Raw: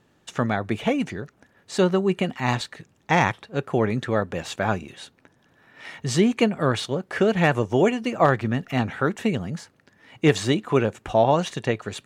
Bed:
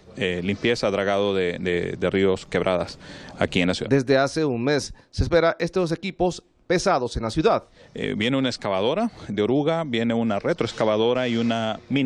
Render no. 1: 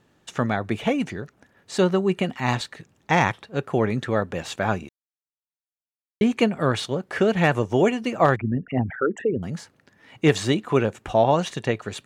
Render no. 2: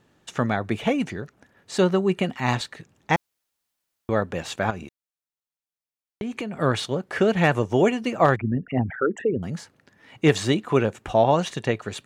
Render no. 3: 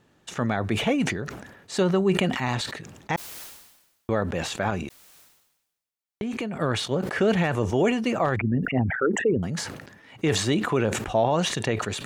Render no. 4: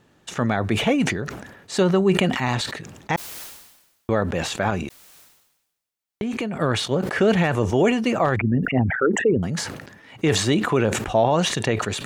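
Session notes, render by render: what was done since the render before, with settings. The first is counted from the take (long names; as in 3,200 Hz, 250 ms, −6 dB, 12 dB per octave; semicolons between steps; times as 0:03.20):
0:04.89–0:06.21: silence; 0:08.36–0:09.43: spectral envelope exaggerated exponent 3
0:03.16–0:04.09: fill with room tone; 0:04.70–0:06.56: downward compressor 12 to 1, threshold −26 dBFS
brickwall limiter −12.5 dBFS, peak gain reduction 7.5 dB; level that may fall only so fast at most 56 dB per second
level +3.5 dB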